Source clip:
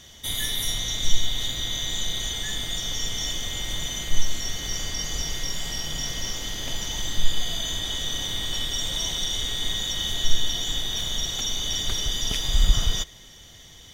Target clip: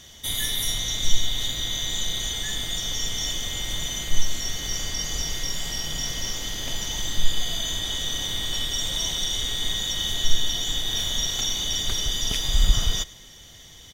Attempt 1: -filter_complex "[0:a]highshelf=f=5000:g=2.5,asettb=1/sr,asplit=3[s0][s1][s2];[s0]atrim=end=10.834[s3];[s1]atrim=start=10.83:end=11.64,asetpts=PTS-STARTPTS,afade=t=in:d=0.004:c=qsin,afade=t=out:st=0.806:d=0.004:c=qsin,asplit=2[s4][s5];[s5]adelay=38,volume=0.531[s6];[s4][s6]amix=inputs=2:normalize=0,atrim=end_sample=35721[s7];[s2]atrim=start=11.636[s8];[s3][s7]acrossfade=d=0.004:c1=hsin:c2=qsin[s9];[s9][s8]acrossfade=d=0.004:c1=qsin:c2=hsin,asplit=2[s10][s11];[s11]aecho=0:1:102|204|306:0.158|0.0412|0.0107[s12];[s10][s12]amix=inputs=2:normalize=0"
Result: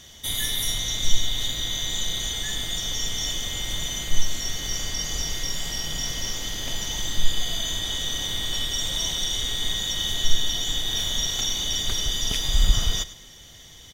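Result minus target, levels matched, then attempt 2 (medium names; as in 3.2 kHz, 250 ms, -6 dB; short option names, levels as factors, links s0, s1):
echo-to-direct +6.5 dB
-filter_complex "[0:a]highshelf=f=5000:g=2.5,asettb=1/sr,asplit=3[s0][s1][s2];[s0]atrim=end=10.834[s3];[s1]atrim=start=10.83:end=11.64,asetpts=PTS-STARTPTS,afade=t=in:d=0.004:c=qsin,afade=t=out:st=0.806:d=0.004:c=qsin,asplit=2[s4][s5];[s5]adelay=38,volume=0.531[s6];[s4][s6]amix=inputs=2:normalize=0,atrim=end_sample=35721[s7];[s2]atrim=start=11.636[s8];[s3][s7]acrossfade=d=0.004:c1=hsin:c2=qsin[s9];[s9][s8]acrossfade=d=0.004:c1=qsin:c2=hsin,asplit=2[s10][s11];[s11]aecho=0:1:102|204:0.075|0.0195[s12];[s10][s12]amix=inputs=2:normalize=0"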